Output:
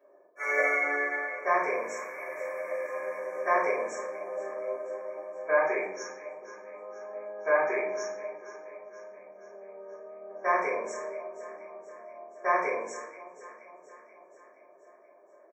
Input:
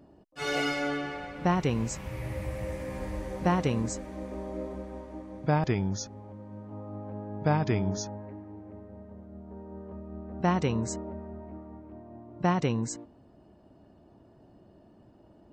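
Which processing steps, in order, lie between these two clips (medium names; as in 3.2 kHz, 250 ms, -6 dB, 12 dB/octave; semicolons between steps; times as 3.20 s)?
Bessel high-pass 600 Hz, order 6; dynamic bell 2.1 kHz, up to +6 dB, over -51 dBFS, Q 1.5; brick-wall FIR band-stop 2.5–5.3 kHz; peaking EQ 8.7 kHz -12 dB 1.8 oct; comb 1.8 ms, depth 55%; on a send: echo whose repeats swap between lows and highs 239 ms, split 890 Hz, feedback 75%, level -13.5 dB; on the sum: simulated room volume 100 m³, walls mixed, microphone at 2.9 m; trim -7.5 dB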